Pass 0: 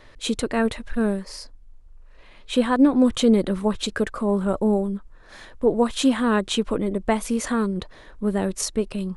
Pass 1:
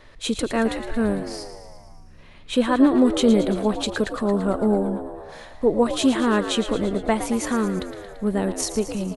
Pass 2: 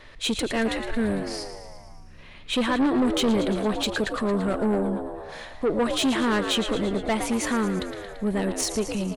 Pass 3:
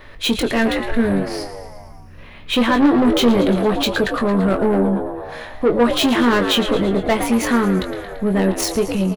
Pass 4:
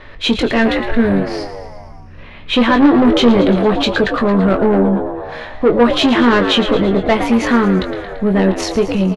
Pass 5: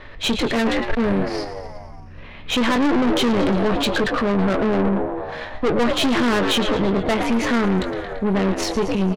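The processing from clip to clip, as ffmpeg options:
-filter_complex "[0:a]asplit=9[a][b][c][d][e][f][g][h][i];[b]adelay=113,afreqshift=69,volume=-11dB[j];[c]adelay=226,afreqshift=138,volume=-14.9dB[k];[d]adelay=339,afreqshift=207,volume=-18.8dB[l];[e]adelay=452,afreqshift=276,volume=-22.6dB[m];[f]adelay=565,afreqshift=345,volume=-26.5dB[n];[g]adelay=678,afreqshift=414,volume=-30.4dB[o];[h]adelay=791,afreqshift=483,volume=-34.3dB[p];[i]adelay=904,afreqshift=552,volume=-38.1dB[q];[a][j][k][l][m][n][o][p][q]amix=inputs=9:normalize=0"
-af "equalizer=f=2.6k:t=o:w=1.7:g=5,asoftclip=type=tanh:threshold=-18dB"
-filter_complex "[0:a]aexciter=amount=5.8:drive=3.2:freq=11k,asplit=2[a][b];[b]adynamicsmooth=sensitivity=4:basefreq=3.4k,volume=2dB[c];[a][c]amix=inputs=2:normalize=0,asplit=2[d][e];[e]adelay=21,volume=-7dB[f];[d][f]amix=inputs=2:normalize=0"
-af "lowpass=4.7k,volume=4dB"
-af "aeval=exprs='(tanh(6.31*val(0)+0.55)-tanh(0.55))/6.31':c=same"

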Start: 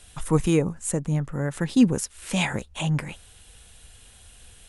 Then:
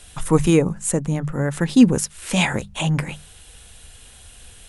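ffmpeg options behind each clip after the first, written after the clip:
-af "bandreject=f=50:t=h:w=6,bandreject=f=100:t=h:w=6,bandreject=f=150:t=h:w=6,bandreject=f=200:t=h:w=6,volume=5.5dB"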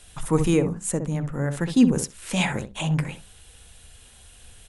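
-filter_complex "[0:a]asplit=2[a][b];[b]adelay=64,lowpass=f=970:p=1,volume=-6.5dB,asplit=2[c][d];[d]adelay=64,lowpass=f=970:p=1,volume=0.17,asplit=2[e][f];[f]adelay=64,lowpass=f=970:p=1,volume=0.17[g];[a][c][e][g]amix=inputs=4:normalize=0,volume=-5dB"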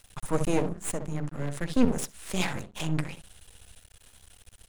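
-af "aeval=exprs='max(val(0),0)':c=same,volume=-1dB"

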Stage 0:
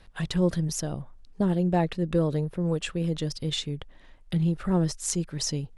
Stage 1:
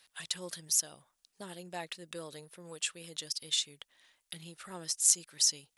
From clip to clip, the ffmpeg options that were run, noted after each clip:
-af "aderivative,volume=5.5dB"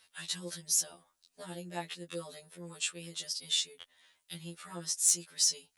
-af "asoftclip=type=tanh:threshold=-13dB,afftfilt=real='re*2*eq(mod(b,4),0)':imag='im*2*eq(mod(b,4),0)':win_size=2048:overlap=0.75,volume=2.5dB"

